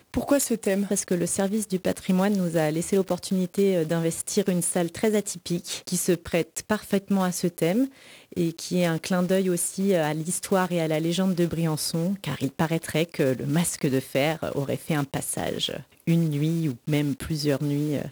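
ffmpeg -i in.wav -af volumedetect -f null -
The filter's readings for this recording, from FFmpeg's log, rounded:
mean_volume: -25.2 dB
max_volume: -9.4 dB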